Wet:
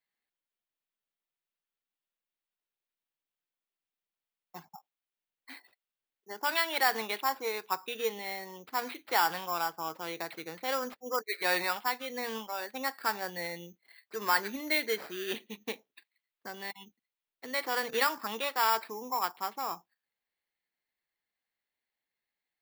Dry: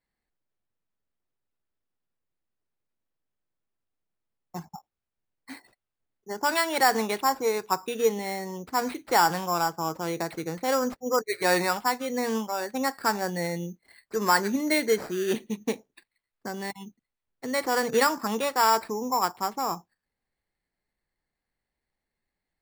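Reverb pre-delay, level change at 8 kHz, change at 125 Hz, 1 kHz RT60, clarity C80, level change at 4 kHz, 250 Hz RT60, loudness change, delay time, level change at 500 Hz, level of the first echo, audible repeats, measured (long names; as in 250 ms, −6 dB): no reverb audible, −8.0 dB, −15.5 dB, no reverb audible, no reverb audible, −3.0 dB, no reverb audible, −5.5 dB, no echo audible, −9.0 dB, no echo audible, no echo audible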